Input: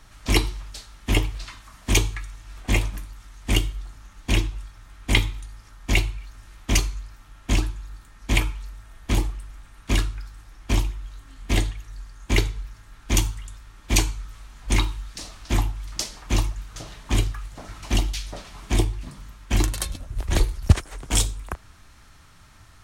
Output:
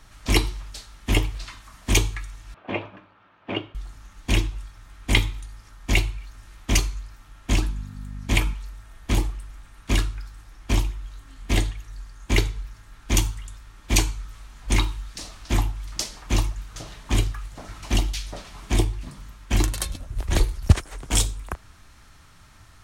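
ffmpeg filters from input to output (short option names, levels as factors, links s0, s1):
-filter_complex "[0:a]asettb=1/sr,asplit=3[s0][s1][s2];[s0]atrim=end=2.544[s3];[s1]atrim=start=2.54:end=3.75,asetpts=PTS-STARTPTS,afade=t=in:d=0.004:c=qsin,afade=t=out:st=1.206:d=0.004:c=qsin,highpass=f=140:w=0.5412,highpass=f=140:w=1.3066,equalizer=f=150:t=q:w=4:g=-9,equalizer=f=230:t=q:w=4:g=-7,equalizer=f=590:t=q:w=4:g=6,equalizer=f=2000:t=q:w=4:g=-8,lowpass=f=2600:w=0.5412,lowpass=f=2600:w=1.3066[s4];[s2]atrim=start=3.746[s5];[s3][s4]acrossfade=d=0.004:c1=hsin:c2=qsin[s6];[s6][s5]acrossfade=d=0.004:c1=qsin:c2=hsin,asettb=1/sr,asplit=3[s7][s8][s9];[s7]atrim=end=7.574[s10];[s8]atrim=start=7.57:end=8.54,asetpts=PTS-STARTPTS,afade=t=in:d=0.004:c=qsin,afade=t=out:st=0.966:d=0.004:c=qsin,aeval=exprs='val(0)+0.0224*(sin(2*PI*50*n/s)+sin(2*PI*2*50*n/s)/2+sin(2*PI*3*50*n/s)/3+sin(2*PI*4*50*n/s)/4+sin(2*PI*5*50*n/s)/5)':c=same[s11];[s9]atrim=start=8.536[s12];[s10][s11]acrossfade=d=0.004:c1=hsin:c2=qsin[s13];[s13][s12]acrossfade=d=0.004:c1=qsin:c2=hsin"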